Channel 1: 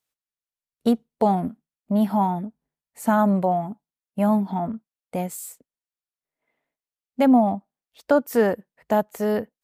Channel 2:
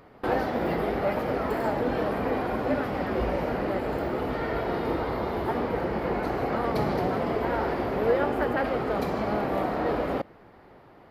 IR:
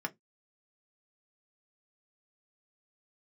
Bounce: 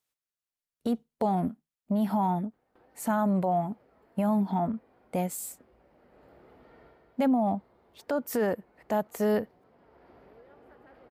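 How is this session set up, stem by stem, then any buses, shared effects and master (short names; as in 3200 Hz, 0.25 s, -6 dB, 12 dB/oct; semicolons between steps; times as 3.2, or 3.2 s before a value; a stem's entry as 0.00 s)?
-1.5 dB, 0.00 s, no send, no echo send, dry
-19.0 dB, 2.30 s, no send, echo send -7 dB, compressor 4:1, threshold -36 dBFS, peak gain reduction 15 dB; auto duck -21 dB, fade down 0.30 s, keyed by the first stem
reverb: off
echo: echo 0.22 s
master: limiter -18.5 dBFS, peak gain reduction 11 dB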